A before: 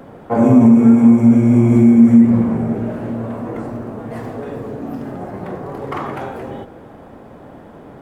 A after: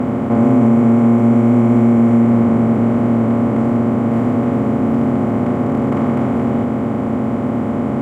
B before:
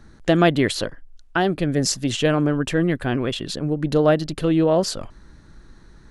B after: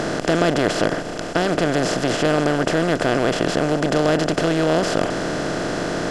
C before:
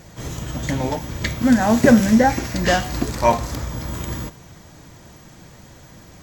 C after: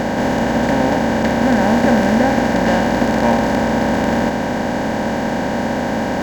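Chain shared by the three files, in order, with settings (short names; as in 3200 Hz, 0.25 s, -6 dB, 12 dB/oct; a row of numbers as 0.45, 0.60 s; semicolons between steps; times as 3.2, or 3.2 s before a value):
per-bin compression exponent 0.2; high shelf 4400 Hz -6.5 dB; gain -6.5 dB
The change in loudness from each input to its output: -3.0, +0.5, +2.5 LU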